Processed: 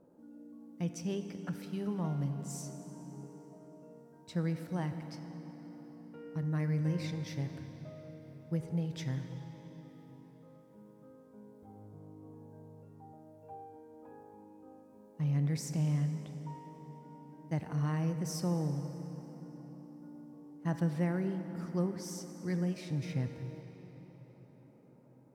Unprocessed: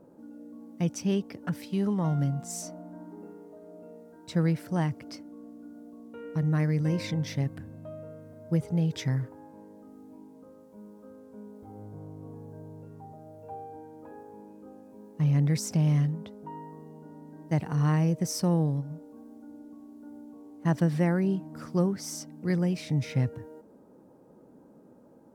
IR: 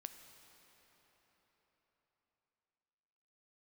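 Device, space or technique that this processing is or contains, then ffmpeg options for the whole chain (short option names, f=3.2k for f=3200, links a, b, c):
cathedral: -filter_complex "[1:a]atrim=start_sample=2205[a];[0:a][a]afir=irnorm=-1:irlink=0,volume=-2.5dB"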